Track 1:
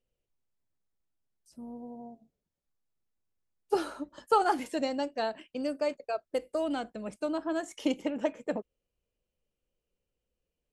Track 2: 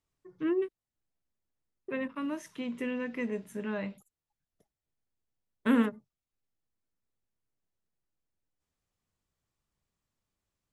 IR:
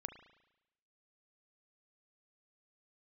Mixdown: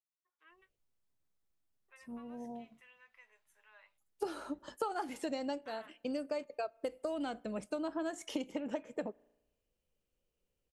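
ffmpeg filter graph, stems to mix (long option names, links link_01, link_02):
-filter_complex "[0:a]adelay=500,volume=-0.5dB,asplit=2[link_01][link_02];[link_02]volume=-18.5dB[link_03];[1:a]highpass=frequency=800:width=0.5412,highpass=frequency=800:width=1.3066,flanger=delay=8.2:depth=1.2:regen=49:speed=1.7:shape=triangular,volume=-14.5dB,asplit=2[link_04][link_05];[link_05]apad=whole_len=494803[link_06];[link_01][link_06]sidechaincompress=threshold=-60dB:ratio=8:attack=6.7:release=216[link_07];[2:a]atrim=start_sample=2205[link_08];[link_03][link_08]afir=irnorm=-1:irlink=0[link_09];[link_07][link_04][link_09]amix=inputs=3:normalize=0,acompressor=threshold=-34dB:ratio=6"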